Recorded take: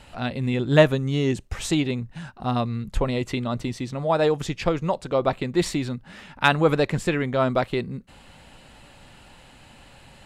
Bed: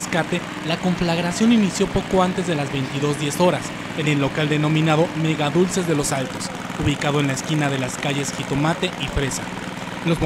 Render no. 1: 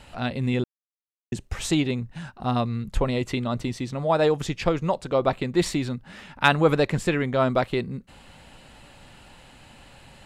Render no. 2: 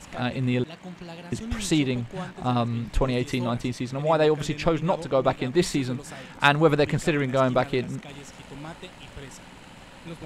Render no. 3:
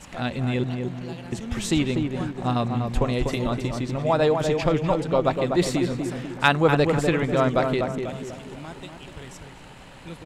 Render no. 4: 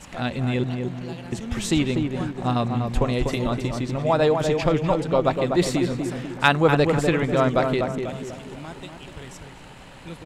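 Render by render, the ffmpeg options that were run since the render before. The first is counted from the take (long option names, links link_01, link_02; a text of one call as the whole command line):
ffmpeg -i in.wav -filter_complex "[0:a]asplit=3[link_01][link_02][link_03];[link_01]atrim=end=0.64,asetpts=PTS-STARTPTS,afade=type=out:start_time=0.636:duration=0.004:curve=hsin[link_04];[link_02]atrim=start=0.64:end=1.32,asetpts=PTS-STARTPTS,volume=0[link_05];[link_03]atrim=start=1.32,asetpts=PTS-STARTPTS,afade=type=in:duration=0.004:curve=hsin[link_06];[link_04][link_05][link_06]concat=n=3:v=0:a=1" out.wav
ffmpeg -i in.wav -i bed.wav -filter_complex "[1:a]volume=-19.5dB[link_01];[0:a][link_01]amix=inputs=2:normalize=0" out.wav
ffmpeg -i in.wav -filter_complex "[0:a]asplit=2[link_01][link_02];[link_02]adelay=246,lowpass=frequency=1300:poles=1,volume=-4dB,asplit=2[link_03][link_04];[link_04]adelay=246,lowpass=frequency=1300:poles=1,volume=0.49,asplit=2[link_05][link_06];[link_06]adelay=246,lowpass=frequency=1300:poles=1,volume=0.49,asplit=2[link_07][link_08];[link_08]adelay=246,lowpass=frequency=1300:poles=1,volume=0.49,asplit=2[link_09][link_10];[link_10]adelay=246,lowpass=frequency=1300:poles=1,volume=0.49,asplit=2[link_11][link_12];[link_12]adelay=246,lowpass=frequency=1300:poles=1,volume=0.49[link_13];[link_01][link_03][link_05][link_07][link_09][link_11][link_13]amix=inputs=7:normalize=0" out.wav
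ffmpeg -i in.wav -af "volume=1dB" out.wav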